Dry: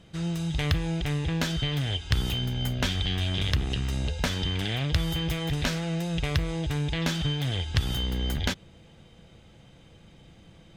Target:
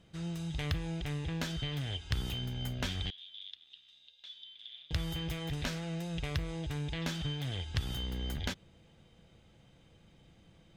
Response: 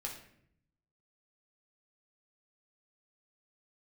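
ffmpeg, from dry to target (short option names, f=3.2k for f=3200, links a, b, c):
-filter_complex "[0:a]asettb=1/sr,asplit=3[a][b][c];[a]atrim=end=3.104[d];[b]atrim=start=3.1:end=4.91,asetpts=PTS-STARTPTS,afade=t=in:d=0.004:c=qsin,afade=t=out:st=1.806:d=0.004:c=qsin,bandpass=f=3.5k:t=q:w=12:csg=0[e];[c]atrim=start=4.906[f];[d][e]acrossfade=d=0.004:c1=hsin:c2=qsin[g];[g][f]acrossfade=d=0.004:c1=qsin:c2=hsin,volume=-8.5dB"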